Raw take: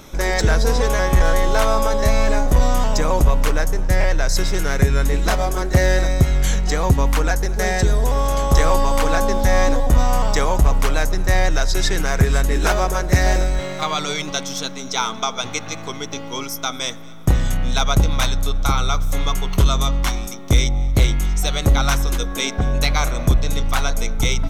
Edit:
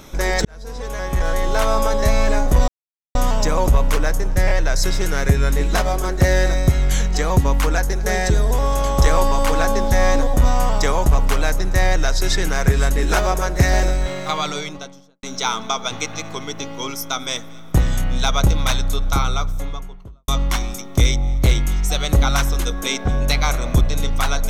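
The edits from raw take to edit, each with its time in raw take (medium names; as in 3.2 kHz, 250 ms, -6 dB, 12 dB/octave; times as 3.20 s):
0.45–1.80 s: fade in
2.68 s: insert silence 0.47 s
13.89–14.76 s: studio fade out
18.61–19.81 s: studio fade out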